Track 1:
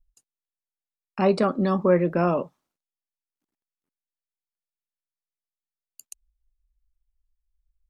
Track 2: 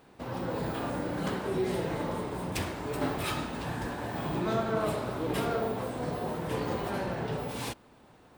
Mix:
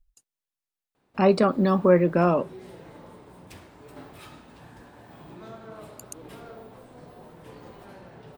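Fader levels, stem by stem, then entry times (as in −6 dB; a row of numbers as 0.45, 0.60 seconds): +1.5, −13.5 decibels; 0.00, 0.95 seconds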